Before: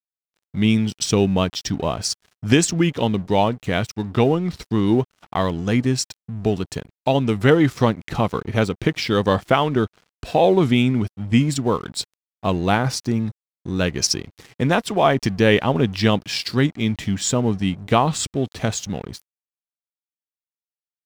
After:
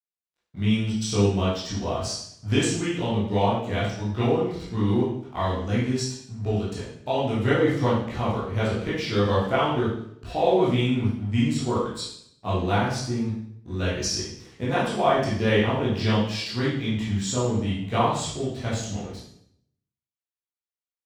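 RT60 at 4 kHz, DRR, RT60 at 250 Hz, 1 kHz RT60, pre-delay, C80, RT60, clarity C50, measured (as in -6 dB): 0.60 s, -9.0 dB, 0.85 s, 0.65 s, 13 ms, 5.5 dB, 0.70 s, 1.5 dB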